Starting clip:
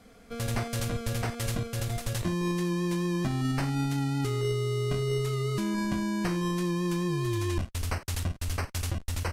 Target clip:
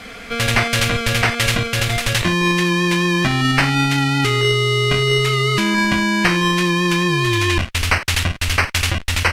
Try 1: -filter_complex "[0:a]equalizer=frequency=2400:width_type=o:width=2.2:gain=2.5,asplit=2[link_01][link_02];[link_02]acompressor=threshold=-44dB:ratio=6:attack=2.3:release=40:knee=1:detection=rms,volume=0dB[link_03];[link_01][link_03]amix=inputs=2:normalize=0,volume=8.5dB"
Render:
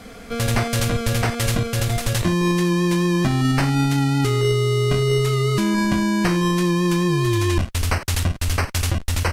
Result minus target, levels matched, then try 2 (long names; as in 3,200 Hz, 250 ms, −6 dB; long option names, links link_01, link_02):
2,000 Hz band −7.0 dB
-filter_complex "[0:a]equalizer=frequency=2400:width_type=o:width=2.2:gain=14.5,asplit=2[link_01][link_02];[link_02]acompressor=threshold=-44dB:ratio=6:attack=2.3:release=40:knee=1:detection=rms,volume=0dB[link_03];[link_01][link_03]amix=inputs=2:normalize=0,volume=8.5dB"